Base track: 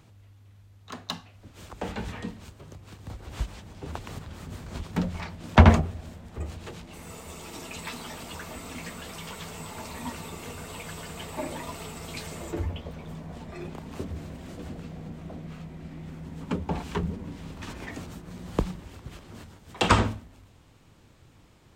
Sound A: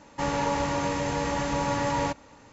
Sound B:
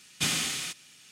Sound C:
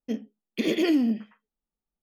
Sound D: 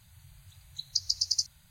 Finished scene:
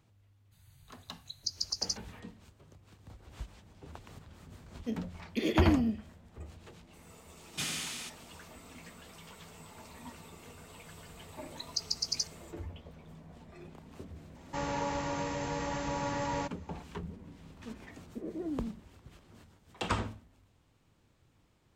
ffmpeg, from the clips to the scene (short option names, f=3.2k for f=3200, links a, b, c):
-filter_complex "[4:a]asplit=2[a][b];[3:a]asplit=2[c][d];[0:a]volume=-12dB[e];[2:a]asoftclip=type=tanh:threshold=-16dB[f];[d]lowpass=f=1.2k:w=0.5412,lowpass=f=1.2k:w=1.3066[g];[a]atrim=end=1.7,asetpts=PTS-STARTPTS,volume=-6dB,afade=t=in:d=0.02,afade=t=out:st=1.68:d=0.02,adelay=510[h];[c]atrim=end=2.02,asetpts=PTS-STARTPTS,volume=-6dB,afade=t=in:d=0.004:c=hsin,afade=t=out:st=2.016:d=0.004:c=hsin,adelay=4780[i];[f]atrim=end=1.11,asetpts=PTS-STARTPTS,volume=-7.5dB,afade=t=in:d=0.004:c=hsin,afade=t=out:st=1.106:d=0.004:c=hsin,adelay=7370[j];[b]atrim=end=1.7,asetpts=PTS-STARTPTS,volume=-5dB,afade=t=in:d=0.004:c=hsin,afade=t=out:st=1.696:d=0.004:c=hsin,adelay=10810[k];[1:a]atrim=end=2.52,asetpts=PTS-STARTPTS,volume=-7.5dB,afade=t=in:d=0.004:c=hsin,afade=t=out:st=2.516:d=0.004:c=hsin,adelay=14350[l];[g]atrim=end=2.02,asetpts=PTS-STARTPTS,volume=-15dB,afade=t=in:d=0.004:c=hsin,afade=t=out:st=2.016:d=0.004:c=hsin,adelay=17570[m];[e][h][i][j][k][l][m]amix=inputs=7:normalize=0"